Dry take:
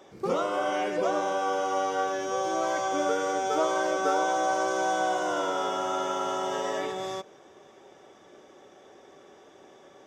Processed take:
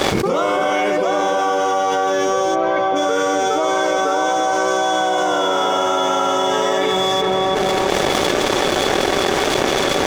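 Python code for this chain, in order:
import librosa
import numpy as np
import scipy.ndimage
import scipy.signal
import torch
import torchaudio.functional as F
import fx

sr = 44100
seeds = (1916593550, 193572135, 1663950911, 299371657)

y = fx.small_body(x, sr, hz=(2200.0, 3400.0), ring_ms=90, db=12)
y = np.sign(y) * np.maximum(np.abs(y) - 10.0 ** (-54.0 / 20.0), 0.0)
y = fx.air_absorb(y, sr, metres=330.0, at=(2.54, 2.95), fade=0.02)
y = fx.echo_filtered(y, sr, ms=334, feedback_pct=26, hz=1800.0, wet_db=-10.5)
y = fx.env_flatten(y, sr, amount_pct=100)
y = y * librosa.db_to_amplitude(5.0)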